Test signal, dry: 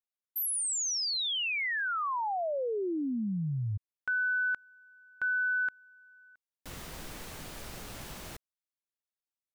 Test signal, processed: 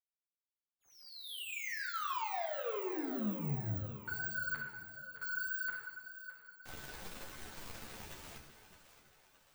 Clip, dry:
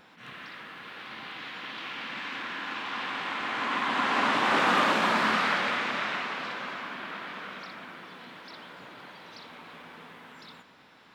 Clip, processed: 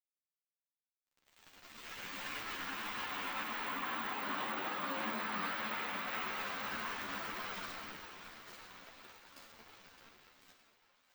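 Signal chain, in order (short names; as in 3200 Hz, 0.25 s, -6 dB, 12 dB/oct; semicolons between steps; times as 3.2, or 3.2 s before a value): opening faded in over 3.42 s; crossover distortion -41.5 dBFS; careless resampling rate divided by 2×, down filtered, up zero stuff; reverse; compressor 6:1, threshold -36 dBFS; reverse; high shelf 7500 Hz -5 dB; wow and flutter 29 cents; plate-style reverb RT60 1 s, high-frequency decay 0.95×, DRR 3 dB; limiter -31.5 dBFS; on a send: split-band echo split 470 Hz, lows 0.352 s, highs 0.616 s, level -12 dB; on the sum: ensemble effect; gain +6.5 dB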